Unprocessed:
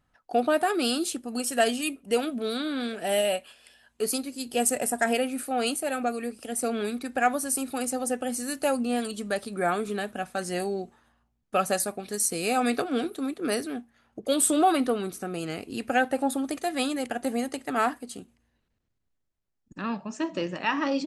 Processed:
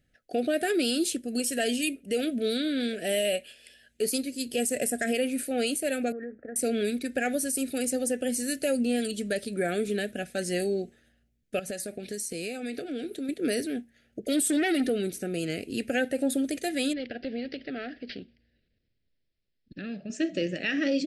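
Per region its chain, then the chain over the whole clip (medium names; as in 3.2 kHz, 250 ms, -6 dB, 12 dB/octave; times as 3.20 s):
6.12–6.56 s: steep low-pass 1.8 kHz 72 dB/octave + tilt shelf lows -4 dB, about 690 Hz + compression, threshold -35 dBFS
11.59–13.29 s: treble shelf 9.9 kHz -7 dB + compression, threshold -32 dBFS
14.27–14.89 s: comb 2.9 ms, depth 72% + transformer saturation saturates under 1.3 kHz
16.93–20.10 s: compression 2:1, threshold -36 dBFS + careless resampling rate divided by 4×, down none, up filtered
whole clip: Chebyshev band-stop 560–1800 Hz, order 2; peak limiter -20.5 dBFS; trim +2.5 dB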